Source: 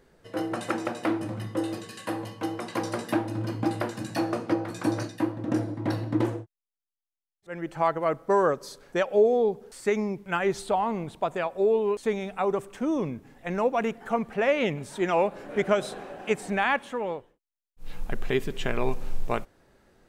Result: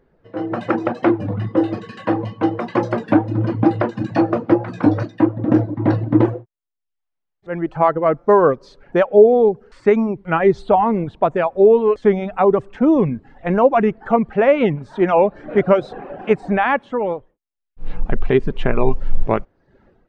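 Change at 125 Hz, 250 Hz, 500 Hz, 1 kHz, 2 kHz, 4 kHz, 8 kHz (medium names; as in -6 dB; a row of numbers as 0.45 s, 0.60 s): +11.5 dB, +11.5 dB, +10.5 dB, +9.5 dB, +5.5 dB, no reading, under -10 dB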